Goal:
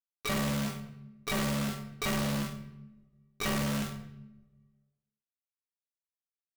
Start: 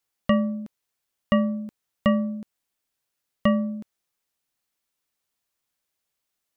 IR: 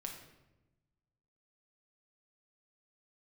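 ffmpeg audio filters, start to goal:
-filter_complex "[0:a]asubboost=boost=3.5:cutoff=130,asplit=3[a][b][c];[b]asetrate=29433,aresample=44100,atempo=1.49831,volume=-6dB[d];[c]asetrate=88200,aresample=44100,atempo=0.5,volume=-13dB[e];[a][d][e]amix=inputs=3:normalize=0,asplit=2[f][g];[g]acompressor=threshold=-31dB:ratio=6,volume=2dB[h];[f][h]amix=inputs=2:normalize=0,acrusher=bits=6:dc=4:mix=0:aa=0.000001,aecho=1:1:20|43|69.45|99.87|134.8:0.631|0.398|0.251|0.158|0.1,asplit=2[i][j];[1:a]atrim=start_sample=2205,adelay=48[k];[j][k]afir=irnorm=-1:irlink=0,volume=-7.5dB[l];[i][l]amix=inputs=2:normalize=0,acontrast=70,tiltshelf=f=1.5k:g=-5.5,volume=21.5dB,asoftclip=hard,volume=-21.5dB,volume=-7.5dB"

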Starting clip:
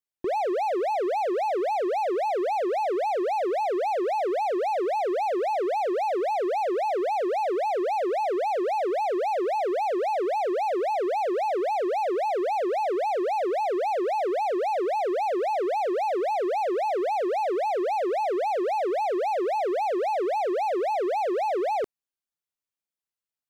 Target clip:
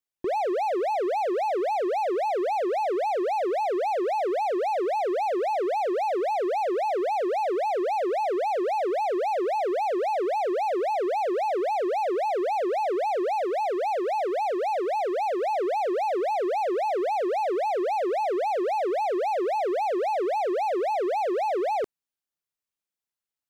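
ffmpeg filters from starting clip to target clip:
-filter_complex "[0:a]asettb=1/sr,asplit=3[a][b][c];[a]atrim=end=13.354[d];[b]atrim=start=13.35:end=15.42,asetpts=PTS-STARTPTS,afade=t=in:d=0.004:c=qsin,afade=t=out:st=2.066:d=0.004:c=qsin,lowshelf=f=130:t=q:w=3:g=10[e];[c]atrim=start=15.416[f];[d][e]acrossfade=d=0.004:c1=hsin:c2=qsin[g];[g][f]acrossfade=d=0.004:c1=qsin:c2=hsin"

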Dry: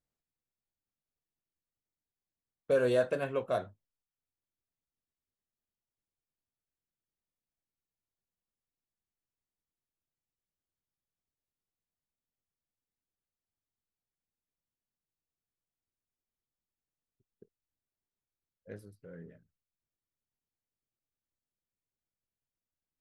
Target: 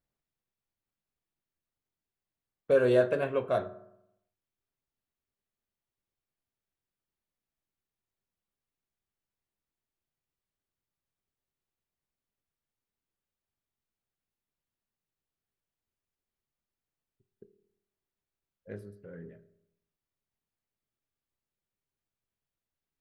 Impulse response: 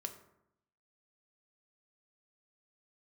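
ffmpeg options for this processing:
-filter_complex "[0:a]asplit=2[a][b];[1:a]atrim=start_sample=2205,lowpass=4.3k[c];[b][c]afir=irnorm=-1:irlink=0,volume=2dB[d];[a][d]amix=inputs=2:normalize=0,volume=-2.5dB"

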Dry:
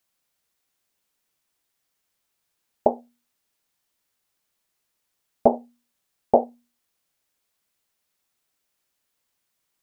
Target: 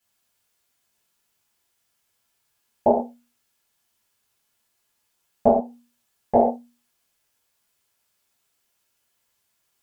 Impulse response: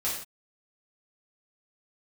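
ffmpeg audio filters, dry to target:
-filter_complex "[0:a]asplit=3[a][b][c];[a]afade=t=out:st=5.46:d=0.02[d];[b]acompressor=threshold=-21dB:ratio=4,afade=t=in:st=5.46:d=0.02,afade=t=out:st=6.34:d=0.02[e];[c]afade=t=in:st=6.34:d=0.02[f];[d][e][f]amix=inputs=3:normalize=0[g];[1:a]atrim=start_sample=2205,asetrate=57330,aresample=44100[h];[g][h]afir=irnorm=-1:irlink=0"

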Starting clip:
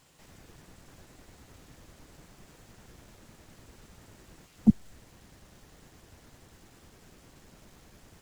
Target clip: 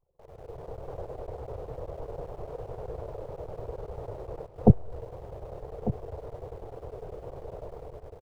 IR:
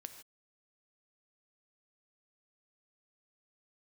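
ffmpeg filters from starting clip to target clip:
-filter_complex "[0:a]anlmdn=0.000251,firequalizer=gain_entry='entry(120,0);entry(230,-18);entry(450,12);entry(1700,-16);entry(7300,-29)':delay=0.05:min_phase=1,dynaudnorm=f=220:g=5:m=12dB,asplit=2[a][b];[b]aeval=exprs='val(0)*gte(abs(val(0)),0.00376)':c=same,volume=-9.5dB[c];[a][c]amix=inputs=2:normalize=0,aecho=1:1:1197:0.224"

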